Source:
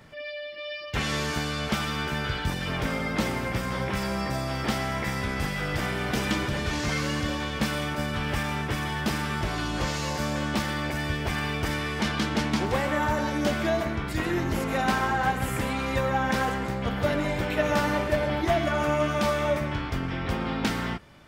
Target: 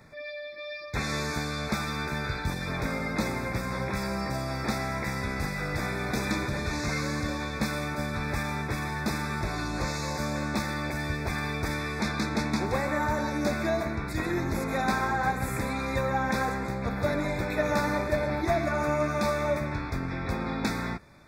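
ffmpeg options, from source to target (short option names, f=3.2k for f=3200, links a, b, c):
-af "asuperstop=centerf=3000:order=20:qfactor=3.6,volume=-2dB"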